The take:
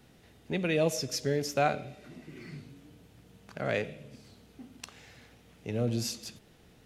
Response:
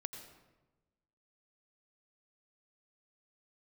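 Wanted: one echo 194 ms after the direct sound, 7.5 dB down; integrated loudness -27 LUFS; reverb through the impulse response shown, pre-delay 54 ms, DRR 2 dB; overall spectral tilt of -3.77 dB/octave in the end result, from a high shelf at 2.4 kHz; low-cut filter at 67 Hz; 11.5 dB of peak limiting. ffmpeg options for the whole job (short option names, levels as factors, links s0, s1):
-filter_complex "[0:a]highpass=67,highshelf=f=2400:g=5.5,alimiter=limit=0.0708:level=0:latency=1,aecho=1:1:194:0.422,asplit=2[s0][s1];[1:a]atrim=start_sample=2205,adelay=54[s2];[s1][s2]afir=irnorm=-1:irlink=0,volume=1[s3];[s0][s3]amix=inputs=2:normalize=0,volume=1.88"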